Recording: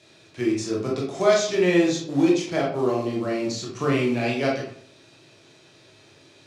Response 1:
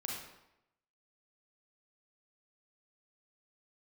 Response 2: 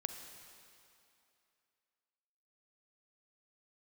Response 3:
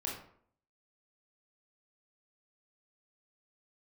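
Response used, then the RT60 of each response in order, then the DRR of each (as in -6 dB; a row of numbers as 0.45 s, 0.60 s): 3; 0.85 s, 2.7 s, 0.60 s; -2.0 dB, 6.5 dB, -3.0 dB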